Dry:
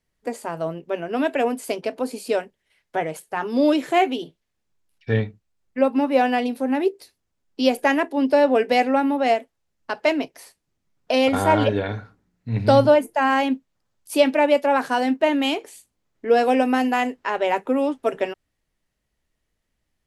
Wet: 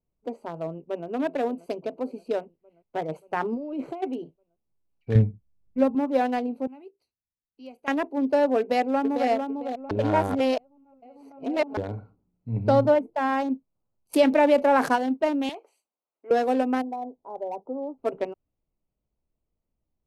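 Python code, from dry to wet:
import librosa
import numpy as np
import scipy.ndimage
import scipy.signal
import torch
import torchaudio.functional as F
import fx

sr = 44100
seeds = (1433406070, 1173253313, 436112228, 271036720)

y = fx.echo_throw(x, sr, start_s=0.66, length_s=0.42, ms=580, feedback_pct=60, wet_db=-17.5)
y = fx.over_compress(y, sr, threshold_db=-25.0, ratio=-1.0, at=(3.08, 4.02), fade=0.02)
y = fx.bass_treble(y, sr, bass_db=11, treble_db=1, at=(5.15, 5.95))
y = fx.tone_stack(y, sr, knobs='5-5-5', at=(6.67, 7.88))
y = fx.echo_throw(y, sr, start_s=8.59, length_s=0.71, ms=450, feedback_pct=35, wet_db=-5.5)
y = fx.lowpass(y, sr, hz=3000.0, slope=6, at=(12.51, 13.5))
y = fx.env_flatten(y, sr, amount_pct=50, at=(14.13, 14.95), fade=0.02)
y = fx.highpass(y, sr, hz=730.0, slope=12, at=(15.49, 16.31))
y = fx.ladder_lowpass(y, sr, hz=930.0, resonance_pct=45, at=(16.81, 17.97), fade=0.02)
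y = fx.edit(y, sr, fx.reverse_span(start_s=9.91, length_s=1.86), tone=tone)
y = fx.wiener(y, sr, points=25)
y = fx.dynamic_eq(y, sr, hz=2900.0, q=1.0, threshold_db=-38.0, ratio=4.0, max_db=-4)
y = F.gain(torch.from_numpy(y), -4.0).numpy()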